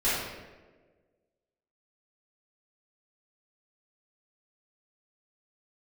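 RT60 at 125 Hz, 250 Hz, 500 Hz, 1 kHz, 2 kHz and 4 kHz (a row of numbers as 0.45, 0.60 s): 1.5, 1.6, 1.7, 1.1, 1.0, 0.80 s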